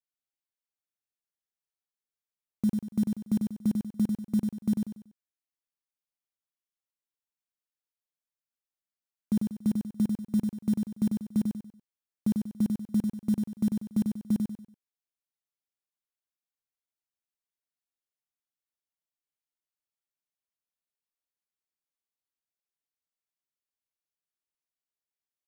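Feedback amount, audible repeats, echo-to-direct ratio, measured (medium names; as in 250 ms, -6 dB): 34%, 4, -4.0 dB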